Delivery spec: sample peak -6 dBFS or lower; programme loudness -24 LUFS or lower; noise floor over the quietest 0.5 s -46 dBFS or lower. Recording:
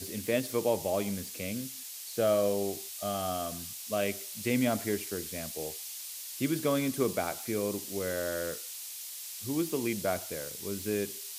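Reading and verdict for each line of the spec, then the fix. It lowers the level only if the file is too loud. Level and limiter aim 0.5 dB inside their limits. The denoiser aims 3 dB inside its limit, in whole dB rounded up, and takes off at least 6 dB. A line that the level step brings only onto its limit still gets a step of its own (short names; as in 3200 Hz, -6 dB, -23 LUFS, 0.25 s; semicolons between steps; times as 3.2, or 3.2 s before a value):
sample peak -14.5 dBFS: OK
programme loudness -32.5 LUFS: OK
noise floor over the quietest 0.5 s -43 dBFS: fail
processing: denoiser 6 dB, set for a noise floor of -43 dBFS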